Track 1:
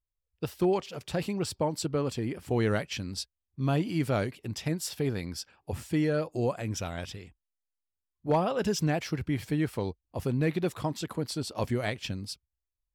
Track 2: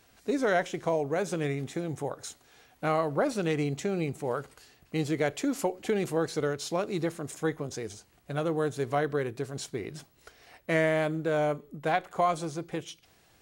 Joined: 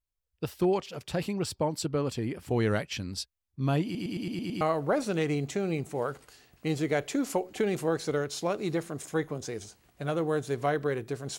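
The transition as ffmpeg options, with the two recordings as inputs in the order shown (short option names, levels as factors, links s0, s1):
-filter_complex "[0:a]apad=whole_dur=11.38,atrim=end=11.38,asplit=7[s0][s1][s2][s3][s4][s5][s6];[s0]atrim=end=3.952[s7];[s1]atrim=start=3.838:end=3.952[s8];[s2]atrim=start=3.838:end=3.952[s9];[s3]atrim=start=3.838:end=3.952[s10];[s4]atrim=start=3.838:end=3.952[s11];[s5]atrim=start=3.838:end=3.952[s12];[s6]atrim=start=3.838:end=3.952[s13];[1:a]atrim=start=2.898:end=9.67[s14];[s7][s8]acrossfade=d=0.004:c1=hsin:c2=hsin[s15];[s15][s9]acrossfade=d=0.004:c1=hsin:c2=hsin[s16];[s16][s10]acrossfade=d=0.004:c1=hsin:c2=hsin[s17];[s17][s11]acrossfade=d=0.004:c1=hsin:c2=hsin[s18];[s18][s12]acrossfade=d=0.004:c1=hsin:c2=hsin[s19];[s19][s13]acrossfade=d=0.004:c1=hsin:c2=hsin[s20];[s20][s14]acrossfade=d=0.004:c1=hsin:c2=hsin"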